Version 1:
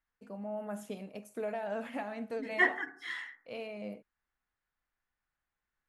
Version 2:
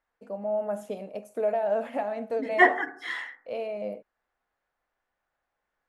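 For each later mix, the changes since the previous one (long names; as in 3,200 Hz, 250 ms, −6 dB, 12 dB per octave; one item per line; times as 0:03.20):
second voice +4.5 dB
master: add parametric band 600 Hz +12 dB 1.3 octaves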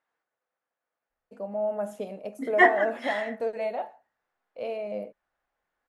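first voice: entry +1.10 s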